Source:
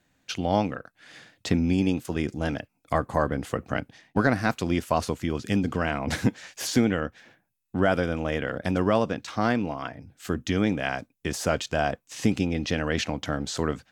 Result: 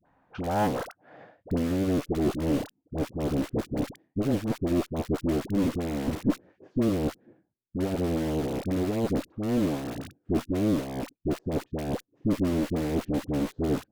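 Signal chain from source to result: reverse; compression 10:1, threshold -30 dBFS, peak gain reduction 15 dB; reverse; low-pass sweep 930 Hz -> 350 Hz, 0.54–2.42 s; in parallel at -3.5 dB: bit crusher 6-bit; on the sum: Chebyshev shaper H 6 -18 dB, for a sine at -11 dBFS; phase dispersion highs, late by 59 ms, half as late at 700 Hz; tape noise reduction on one side only encoder only

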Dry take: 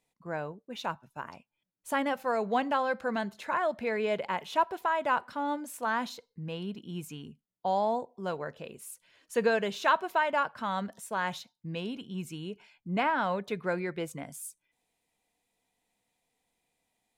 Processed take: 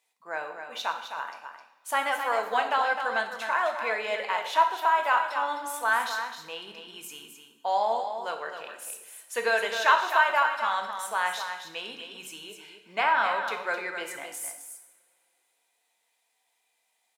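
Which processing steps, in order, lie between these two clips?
high-pass 800 Hz 12 dB/octave; delay 260 ms -8 dB; two-slope reverb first 0.78 s, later 3 s, from -24 dB, DRR 4.5 dB; trim +5 dB

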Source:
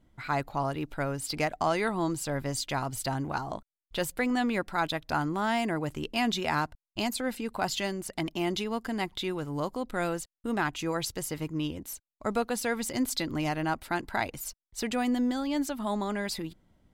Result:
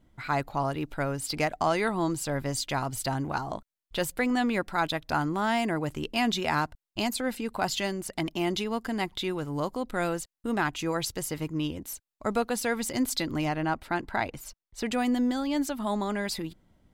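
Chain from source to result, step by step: 13.45–14.86 s: treble shelf 5.2 kHz -10 dB; trim +1.5 dB

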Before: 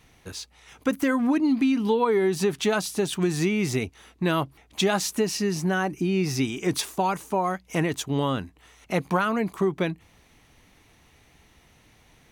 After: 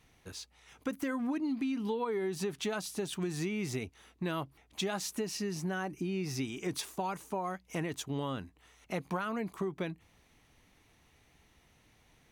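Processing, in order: compression 2:1, threshold -25 dBFS, peak gain reduction 4.5 dB; trim -8 dB

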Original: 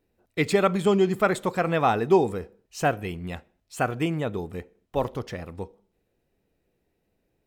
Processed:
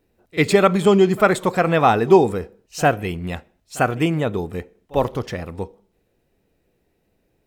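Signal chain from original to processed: pre-echo 47 ms -23 dB; trim +6.5 dB

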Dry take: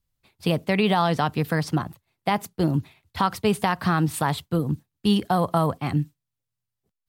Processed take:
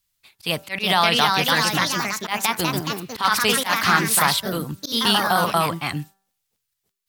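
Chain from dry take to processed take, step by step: tilt shelf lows -9.5 dB, about 920 Hz; de-hum 194.5 Hz, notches 9; ever faster or slower copies 420 ms, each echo +2 st, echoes 3; slow attack 114 ms; trim +3 dB

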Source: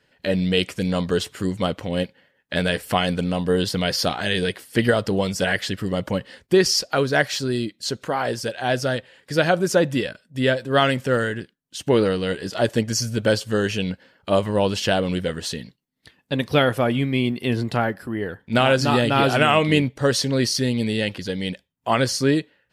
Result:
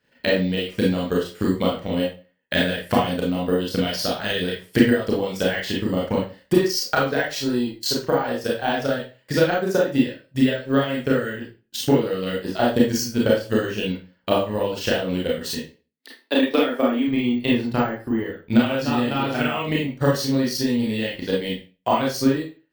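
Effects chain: 15.59–17.08 s: Chebyshev high-pass 220 Hz, order 8; compression 6:1, threshold -19 dBFS, peak gain reduction 8 dB; transient shaper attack +12 dB, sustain -9 dB; hard clipper -1.5 dBFS, distortion -31 dB; reverberation RT60 0.35 s, pre-delay 27 ms, DRR -4.5 dB; careless resampling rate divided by 2×, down none, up hold; trim -8 dB

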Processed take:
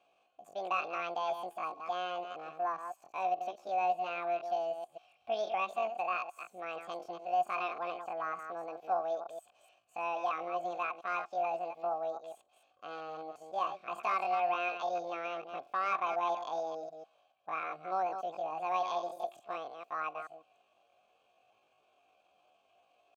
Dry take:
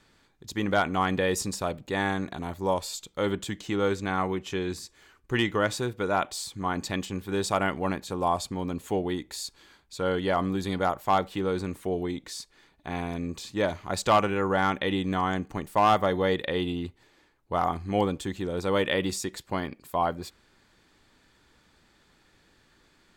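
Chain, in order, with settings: chunks repeated in reverse 147 ms, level -8 dB; in parallel at -2.5 dB: compression 6:1, threshold -38 dBFS, peak gain reduction 20 dB; on the sum: pitch shift +10.5 st; vowel filter a

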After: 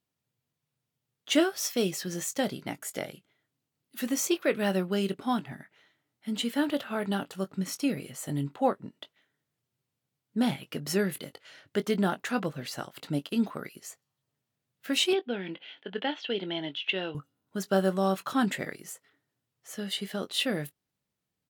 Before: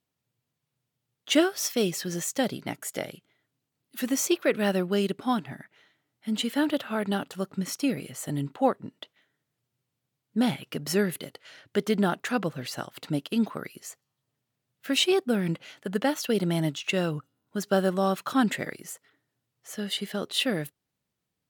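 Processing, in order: 15.13–17.15 s: cabinet simulation 340–3600 Hz, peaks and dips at 580 Hz -6 dB, 1.2 kHz -9 dB, 3.2 kHz +9 dB; doubling 21 ms -12 dB; trim -2.5 dB

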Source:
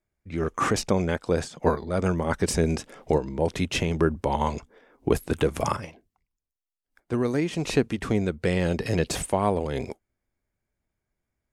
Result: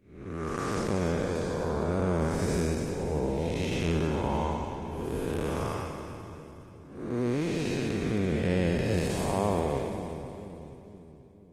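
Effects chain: spectral blur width 340 ms; two-band feedback delay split 400 Hz, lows 480 ms, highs 289 ms, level -8.5 dB; Opus 20 kbps 48 kHz

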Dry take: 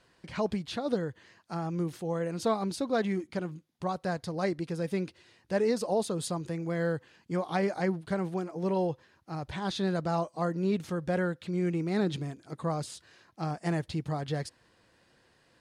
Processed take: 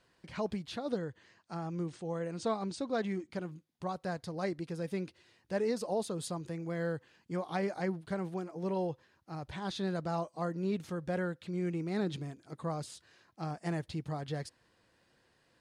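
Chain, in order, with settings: 0.90–3.31 s: brick-wall FIR low-pass 9.4 kHz; trim -5 dB

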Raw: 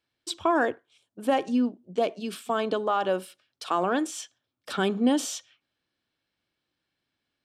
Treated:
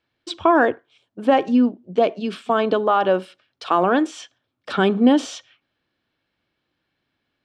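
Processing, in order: Bessel low-pass 3.1 kHz, order 2; trim +8 dB

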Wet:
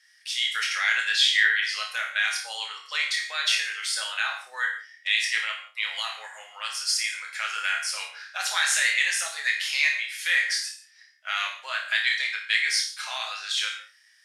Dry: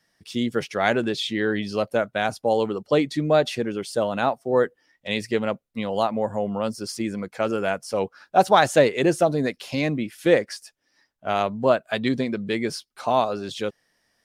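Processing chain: low-pass 10 kHz 12 dB/octave; treble shelf 2.6 kHz +9.5 dB; peak limiter -11 dBFS, peak gain reduction 9 dB; ladder high-pass 1.5 kHz, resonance 45%; flutter echo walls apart 4.8 m, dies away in 0.27 s; gated-style reverb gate 200 ms falling, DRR 2 dB; trim +7.5 dB

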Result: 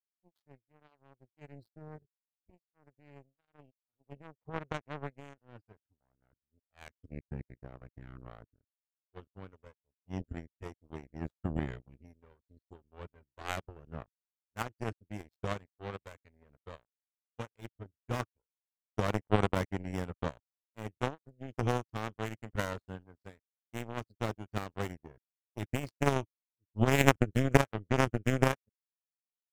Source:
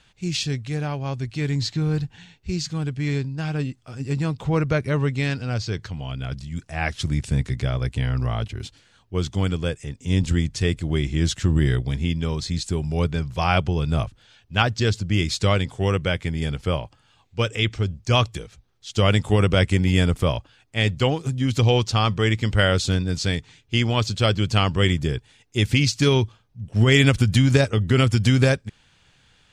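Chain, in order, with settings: median filter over 15 samples; spectral noise reduction 19 dB; power-law waveshaper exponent 3; trim +3 dB

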